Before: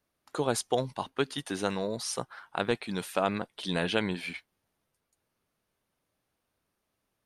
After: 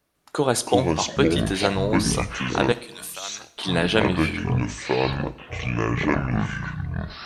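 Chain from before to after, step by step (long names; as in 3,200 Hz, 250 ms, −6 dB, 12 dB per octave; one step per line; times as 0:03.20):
delay with pitch and tempo change per echo 152 ms, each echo −7 semitones, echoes 3
0:02.72–0:03.57: first-order pre-emphasis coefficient 0.97
on a send: convolution reverb, pre-delay 3 ms, DRR 13.5 dB
on the sum: level +7.5 dB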